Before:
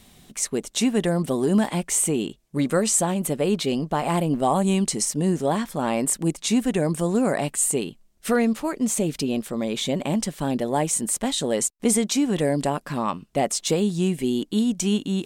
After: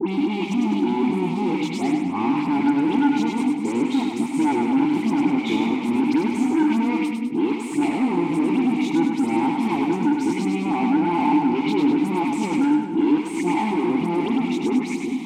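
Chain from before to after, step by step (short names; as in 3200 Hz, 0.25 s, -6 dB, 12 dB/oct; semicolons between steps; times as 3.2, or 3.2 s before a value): whole clip reversed; HPF 150 Hz 12 dB/oct; notches 50/100/150/200/250/300 Hz; limiter -21 dBFS, peak gain reduction 11.5 dB; sample leveller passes 5; dispersion highs, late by 88 ms, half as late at 2100 Hz; added harmonics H 8 -29 dB, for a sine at -8.5 dBFS; vowel filter u; sine folder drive 6 dB, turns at -19 dBFS; split-band echo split 390 Hz, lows 0.395 s, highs 0.101 s, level -4.5 dB; gain +3.5 dB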